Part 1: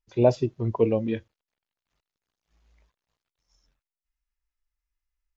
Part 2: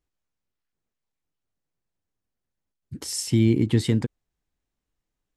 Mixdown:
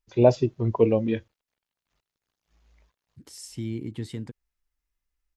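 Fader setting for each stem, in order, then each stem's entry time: +2.0, −13.0 decibels; 0.00, 0.25 seconds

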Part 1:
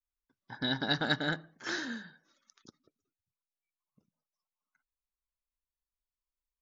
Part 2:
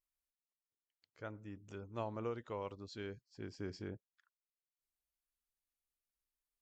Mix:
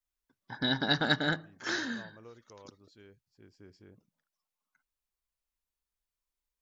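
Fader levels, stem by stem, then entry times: +2.5, −11.0 decibels; 0.00, 0.00 seconds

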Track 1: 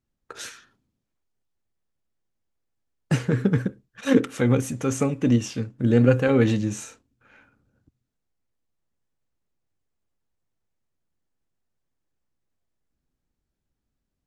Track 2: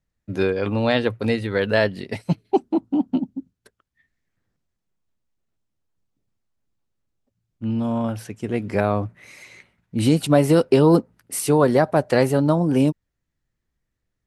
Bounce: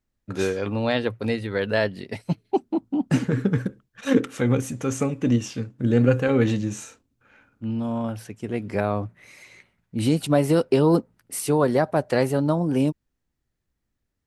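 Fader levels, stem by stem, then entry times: −1.0, −3.5 decibels; 0.00, 0.00 seconds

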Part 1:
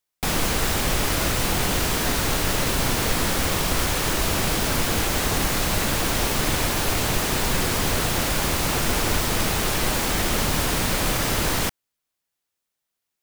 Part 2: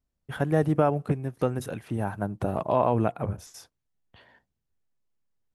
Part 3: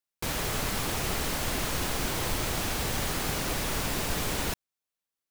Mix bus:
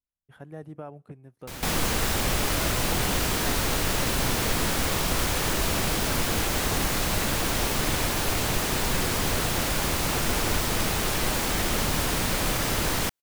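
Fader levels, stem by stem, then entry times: −3.0, −17.5, −7.5 decibels; 1.40, 0.00, 1.25 seconds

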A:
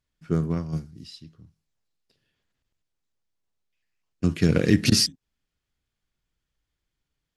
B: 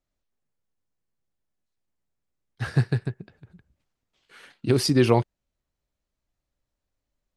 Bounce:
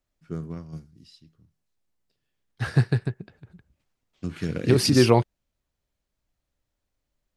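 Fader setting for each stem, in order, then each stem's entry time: −9.0, +1.5 decibels; 0.00, 0.00 seconds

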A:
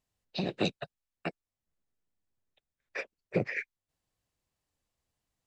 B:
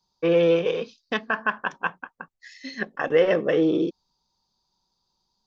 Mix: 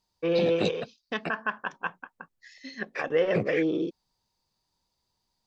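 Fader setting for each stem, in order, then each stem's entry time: +1.0, −5.5 decibels; 0.00, 0.00 seconds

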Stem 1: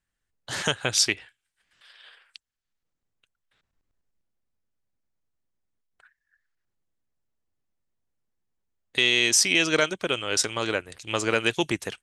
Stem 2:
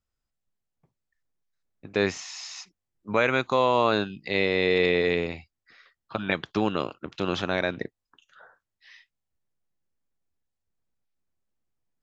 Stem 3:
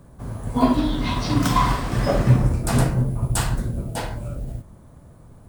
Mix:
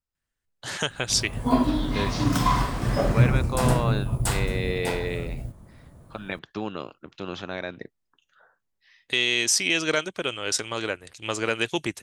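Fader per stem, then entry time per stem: −2.0, −6.5, −3.0 decibels; 0.15, 0.00, 0.90 seconds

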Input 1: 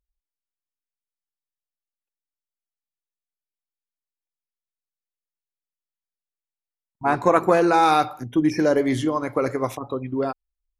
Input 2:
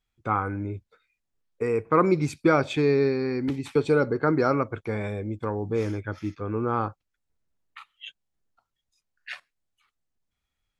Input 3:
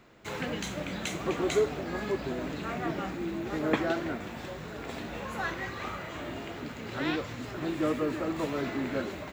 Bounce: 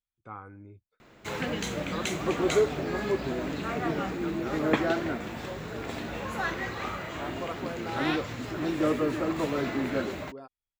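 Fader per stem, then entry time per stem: −20.0, −17.0, +2.5 decibels; 0.15, 0.00, 1.00 seconds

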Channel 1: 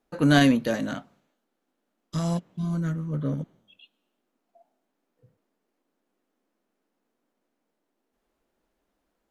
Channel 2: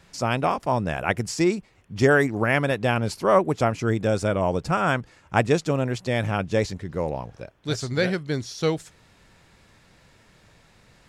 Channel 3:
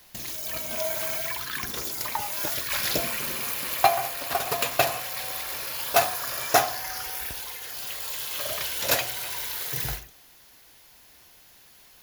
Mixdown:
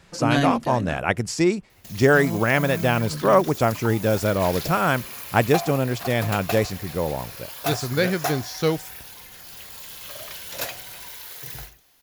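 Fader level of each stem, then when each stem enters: −4.0, +1.5, −6.5 decibels; 0.00, 0.00, 1.70 seconds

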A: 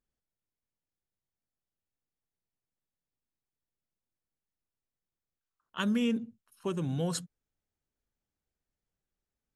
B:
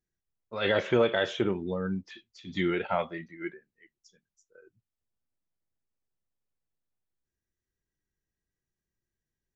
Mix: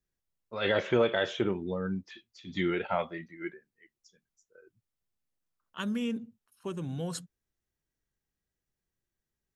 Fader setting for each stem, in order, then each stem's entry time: −3.5, −1.5 decibels; 0.00, 0.00 seconds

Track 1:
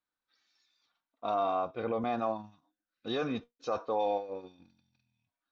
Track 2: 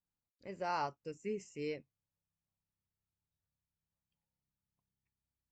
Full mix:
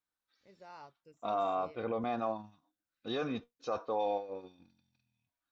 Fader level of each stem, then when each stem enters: −2.5, −15.0 decibels; 0.00, 0.00 seconds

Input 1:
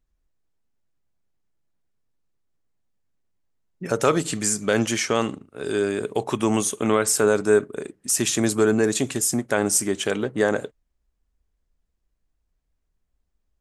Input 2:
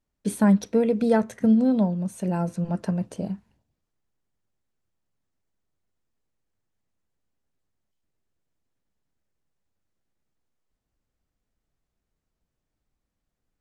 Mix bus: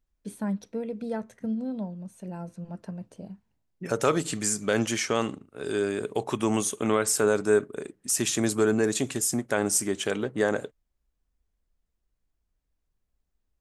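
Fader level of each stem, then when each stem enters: −4.0, −11.5 decibels; 0.00, 0.00 seconds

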